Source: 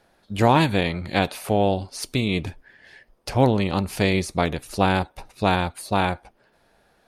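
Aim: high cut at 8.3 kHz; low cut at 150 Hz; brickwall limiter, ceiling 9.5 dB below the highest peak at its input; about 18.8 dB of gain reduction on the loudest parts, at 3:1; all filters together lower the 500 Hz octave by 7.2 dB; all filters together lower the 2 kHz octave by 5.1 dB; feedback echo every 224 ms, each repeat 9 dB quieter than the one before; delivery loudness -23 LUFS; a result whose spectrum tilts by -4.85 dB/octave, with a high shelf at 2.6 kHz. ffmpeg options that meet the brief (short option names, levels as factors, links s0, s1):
-af "highpass=150,lowpass=8300,equalizer=f=500:t=o:g=-9,equalizer=f=2000:t=o:g=-4,highshelf=f=2600:g=-4.5,acompressor=threshold=0.00708:ratio=3,alimiter=level_in=2.51:limit=0.0631:level=0:latency=1,volume=0.398,aecho=1:1:224|448|672|896:0.355|0.124|0.0435|0.0152,volume=13.3"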